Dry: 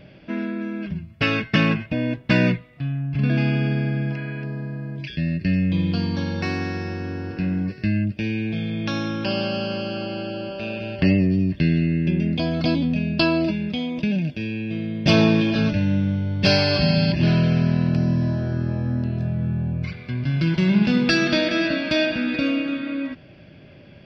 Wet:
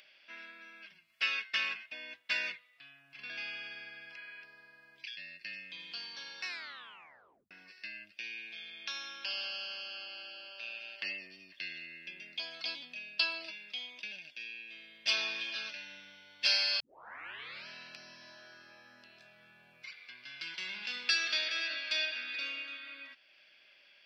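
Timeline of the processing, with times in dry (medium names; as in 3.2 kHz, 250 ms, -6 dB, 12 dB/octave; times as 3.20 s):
6.46 s: tape stop 1.05 s
16.80 s: tape start 0.87 s
whole clip: Bessel high-pass 2.6 kHz, order 2; upward compressor, threshold -52 dBFS; trim -4.5 dB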